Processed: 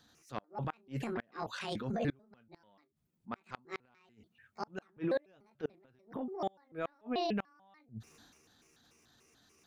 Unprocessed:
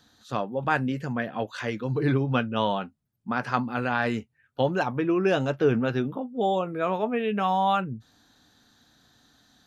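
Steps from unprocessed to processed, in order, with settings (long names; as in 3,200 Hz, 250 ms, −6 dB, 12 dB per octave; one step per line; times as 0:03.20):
pitch shifter gated in a rhythm +7.5 semitones, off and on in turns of 146 ms
transient designer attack −10 dB, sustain +6 dB
gate with flip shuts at −18 dBFS, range −35 dB
level −5.5 dB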